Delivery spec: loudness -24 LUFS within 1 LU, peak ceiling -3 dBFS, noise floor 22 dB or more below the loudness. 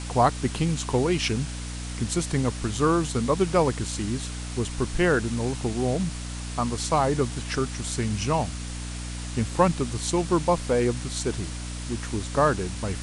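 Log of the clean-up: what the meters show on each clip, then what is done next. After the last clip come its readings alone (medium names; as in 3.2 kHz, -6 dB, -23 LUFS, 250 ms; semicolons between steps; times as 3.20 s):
hum 60 Hz; highest harmonic 300 Hz; hum level -32 dBFS; noise floor -34 dBFS; noise floor target -48 dBFS; loudness -26.0 LUFS; peak level -7.0 dBFS; loudness target -24.0 LUFS
-> de-hum 60 Hz, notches 5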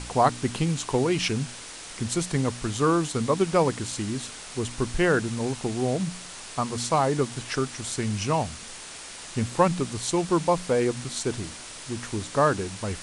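hum not found; noise floor -41 dBFS; noise floor target -49 dBFS
-> noise reduction 8 dB, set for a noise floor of -41 dBFS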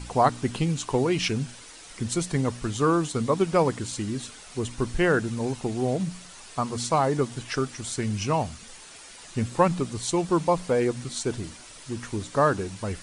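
noise floor -46 dBFS; noise floor target -49 dBFS
-> noise reduction 6 dB, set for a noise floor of -46 dBFS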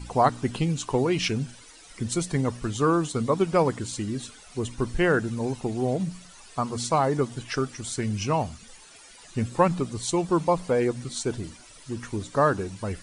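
noise floor -49 dBFS; loudness -26.5 LUFS; peak level -6.5 dBFS; loudness target -24.0 LUFS
-> trim +2.5 dB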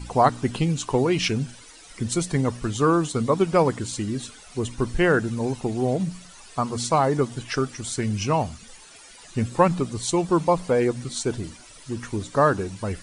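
loudness -24.0 LUFS; peak level -4.0 dBFS; noise floor -47 dBFS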